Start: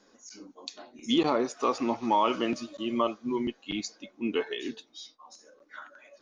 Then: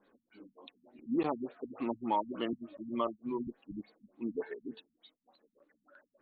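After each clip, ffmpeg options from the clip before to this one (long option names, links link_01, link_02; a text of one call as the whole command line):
ffmpeg -i in.wav -af "afftfilt=real='re*lt(b*sr/1024,230*pow(4600/230,0.5+0.5*sin(2*PI*3.4*pts/sr)))':imag='im*lt(b*sr/1024,230*pow(4600/230,0.5+0.5*sin(2*PI*3.4*pts/sr)))':win_size=1024:overlap=0.75,volume=-6dB" out.wav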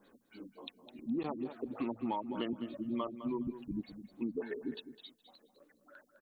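ffmpeg -i in.wav -af "bass=frequency=250:gain=5,treble=frequency=4000:gain=10,acompressor=threshold=-36dB:ratio=6,aecho=1:1:208|416:0.251|0.0427,volume=3dB" out.wav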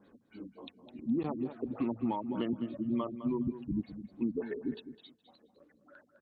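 ffmpeg -i in.wav -af "highpass=72,aemphasis=mode=reproduction:type=bsi" out.wav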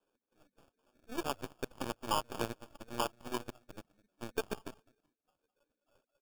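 ffmpeg -i in.wav -filter_complex "[0:a]acrossover=split=390 3000:gain=0.1 1 0.0891[link_01][link_02][link_03];[link_01][link_02][link_03]amix=inputs=3:normalize=0,acrusher=samples=22:mix=1:aa=0.000001,aeval=exprs='0.0501*(cos(1*acos(clip(val(0)/0.0501,-1,1)))-cos(1*PI/2))+0.000794*(cos(3*acos(clip(val(0)/0.0501,-1,1)))-cos(3*PI/2))+0.000501*(cos(5*acos(clip(val(0)/0.0501,-1,1)))-cos(5*PI/2))+0.00501*(cos(6*acos(clip(val(0)/0.0501,-1,1)))-cos(6*PI/2))+0.00794*(cos(7*acos(clip(val(0)/0.0501,-1,1)))-cos(7*PI/2))':channel_layout=same,volume=5dB" out.wav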